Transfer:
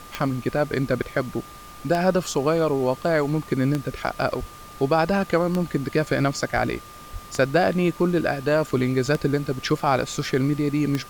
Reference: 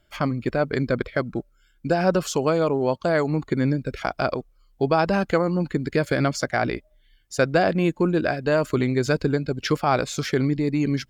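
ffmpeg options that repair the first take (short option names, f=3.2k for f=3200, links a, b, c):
-filter_complex "[0:a]adeclick=t=4,bandreject=f=1.2k:w=30,asplit=3[a][b][c];[a]afade=t=out:st=4.39:d=0.02[d];[b]highpass=f=140:w=0.5412,highpass=f=140:w=1.3066,afade=t=in:st=4.39:d=0.02,afade=t=out:st=4.51:d=0.02[e];[c]afade=t=in:st=4.51:d=0.02[f];[d][e][f]amix=inputs=3:normalize=0,asplit=3[g][h][i];[g]afade=t=out:st=6.54:d=0.02[j];[h]highpass=f=140:w=0.5412,highpass=f=140:w=1.3066,afade=t=in:st=6.54:d=0.02,afade=t=out:st=6.66:d=0.02[k];[i]afade=t=in:st=6.66:d=0.02[l];[j][k][l]amix=inputs=3:normalize=0,asplit=3[m][n][o];[m]afade=t=out:st=7.12:d=0.02[p];[n]highpass=f=140:w=0.5412,highpass=f=140:w=1.3066,afade=t=in:st=7.12:d=0.02,afade=t=out:st=7.24:d=0.02[q];[o]afade=t=in:st=7.24:d=0.02[r];[p][q][r]amix=inputs=3:normalize=0,afftdn=nr=16:nf=-42"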